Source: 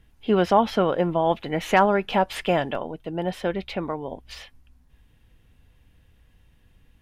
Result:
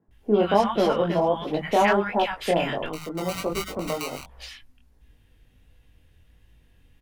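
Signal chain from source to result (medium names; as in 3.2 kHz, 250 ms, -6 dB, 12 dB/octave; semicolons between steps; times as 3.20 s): 2.82–4.13 s: sample-rate reducer 1.7 kHz, jitter 0%; chorus 1.4 Hz, delay 18 ms, depth 6.2 ms; three bands offset in time mids, lows, highs 80/110 ms, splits 160/1100 Hz; 0.43–0.88 s: echo throw 320 ms, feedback 40%, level -11 dB; trim +3.5 dB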